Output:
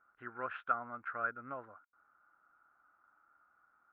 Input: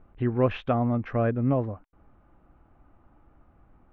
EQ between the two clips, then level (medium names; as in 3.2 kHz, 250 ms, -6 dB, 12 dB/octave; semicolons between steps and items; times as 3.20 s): band-pass filter 1.4 kHz, Q 13; +9.5 dB